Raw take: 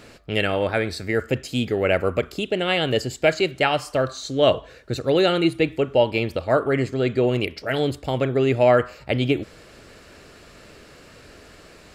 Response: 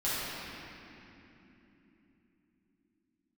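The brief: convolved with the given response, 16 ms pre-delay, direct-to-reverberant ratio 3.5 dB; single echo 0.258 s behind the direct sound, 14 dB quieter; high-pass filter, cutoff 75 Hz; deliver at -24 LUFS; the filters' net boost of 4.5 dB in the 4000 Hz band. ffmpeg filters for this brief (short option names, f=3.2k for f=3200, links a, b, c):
-filter_complex "[0:a]highpass=75,equalizer=f=4k:t=o:g=6.5,aecho=1:1:258:0.2,asplit=2[a][b];[1:a]atrim=start_sample=2205,adelay=16[c];[b][c]afir=irnorm=-1:irlink=0,volume=-13dB[d];[a][d]amix=inputs=2:normalize=0,volume=-4dB"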